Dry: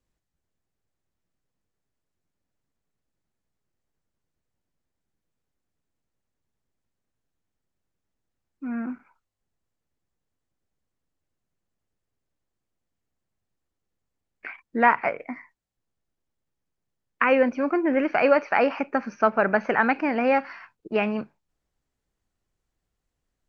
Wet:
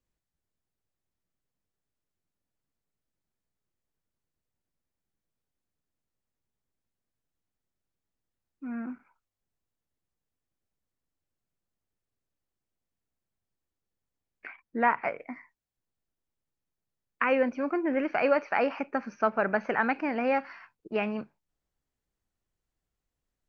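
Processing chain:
0:14.47–0:15.04: high-shelf EQ 4,500 Hz −10 dB
level −5.5 dB

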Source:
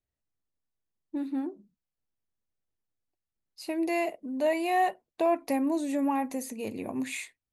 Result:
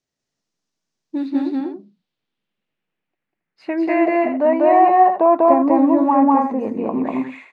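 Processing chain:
low shelf with overshoot 110 Hz −13.5 dB, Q 1.5
low-pass filter sweep 5,900 Hz → 1,100 Hz, 0:00.88–0:04.76
loudspeakers that aren't time-aligned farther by 67 metres 0 dB, 94 metres −7 dB
level +7.5 dB

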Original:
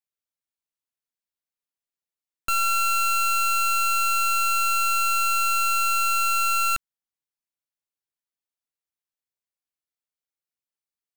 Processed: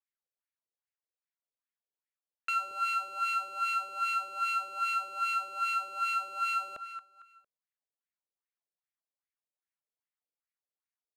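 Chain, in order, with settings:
repeating echo 227 ms, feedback 34%, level −14.5 dB
LFO wah 2.5 Hz 440–2,100 Hz, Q 3.1
dynamic equaliser 1,400 Hz, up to −4 dB, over −40 dBFS, Q 1.8
level +3 dB

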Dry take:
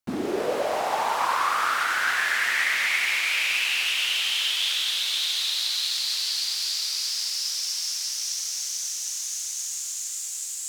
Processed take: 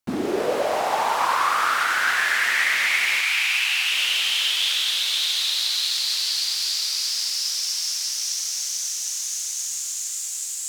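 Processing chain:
0:03.21–0:03.92: elliptic high-pass filter 740 Hz, stop band 40 dB
hard clipping −15 dBFS, distortion −36 dB
level +3 dB

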